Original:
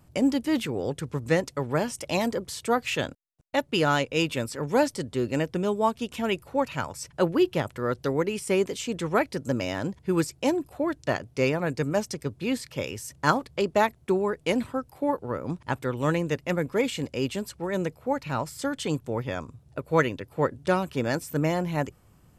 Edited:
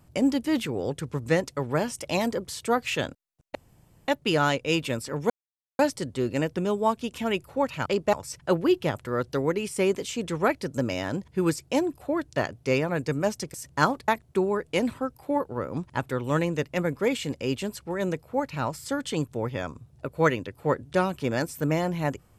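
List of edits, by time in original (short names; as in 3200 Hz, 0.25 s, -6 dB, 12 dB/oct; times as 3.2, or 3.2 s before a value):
3.55 insert room tone 0.53 s
4.77 insert silence 0.49 s
12.25–13 cut
13.54–13.81 move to 6.84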